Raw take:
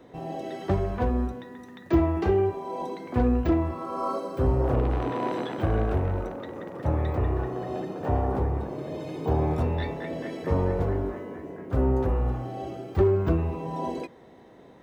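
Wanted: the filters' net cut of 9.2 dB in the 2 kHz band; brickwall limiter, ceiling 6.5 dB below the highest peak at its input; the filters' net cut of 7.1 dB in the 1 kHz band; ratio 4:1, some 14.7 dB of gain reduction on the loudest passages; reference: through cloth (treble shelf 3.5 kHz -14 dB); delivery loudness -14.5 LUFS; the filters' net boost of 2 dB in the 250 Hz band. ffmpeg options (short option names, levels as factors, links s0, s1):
-af "equalizer=f=250:t=o:g=3.5,equalizer=f=1000:t=o:g=-8,equalizer=f=2000:t=o:g=-5,acompressor=threshold=0.02:ratio=4,alimiter=level_in=1.78:limit=0.0631:level=0:latency=1,volume=0.562,highshelf=f=3500:g=-14,volume=15.8"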